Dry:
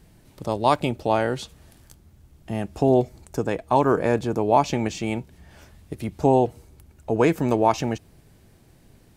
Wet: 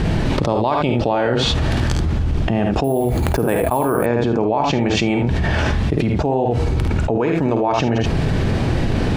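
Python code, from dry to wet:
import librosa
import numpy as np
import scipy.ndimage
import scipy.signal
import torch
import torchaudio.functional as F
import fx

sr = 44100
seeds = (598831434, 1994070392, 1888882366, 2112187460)

y = scipy.signal.sosfilt(scipy.signal.butter(2, 3500.0, 'lowpass', fs=sr, output='sos'), x)
y = fx.notch(y, sr, hz=2100.0, q=29.0)
y = fx.room_early_taps(y, sr, ms=(51, 76), db=(-8.0, -9.0))
y = fx.resample_bad(y, sr, factor=4, down='filtered', up='hold', at=(2.84, 4.06))
y = fx.env_flatten(y, sr, amount_pct=100)
y = y * 10.0 ** (-4.0 / 20.0)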